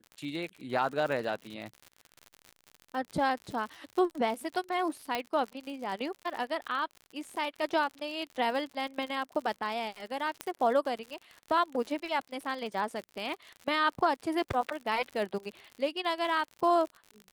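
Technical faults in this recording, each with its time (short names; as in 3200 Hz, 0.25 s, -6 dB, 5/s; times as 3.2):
crackle 71/s -37 dBFS
5.15 pop -16 dBFS
10.41 pop -17 dBFS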